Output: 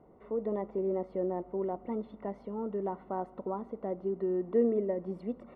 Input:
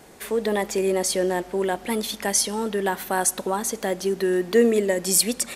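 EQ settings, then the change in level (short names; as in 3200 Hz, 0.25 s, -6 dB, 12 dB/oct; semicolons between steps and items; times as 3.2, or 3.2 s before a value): polynomial smoothing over 65 samples; air absorption 450 m; notch 830 Hz, Q 12; -8.0 dB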